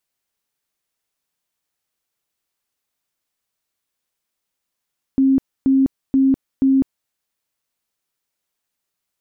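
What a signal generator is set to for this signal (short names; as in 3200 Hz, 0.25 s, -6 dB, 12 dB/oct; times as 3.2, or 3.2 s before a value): tone bursts 268 Hz, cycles 54, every 0.48 s, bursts 4, -11 dBFS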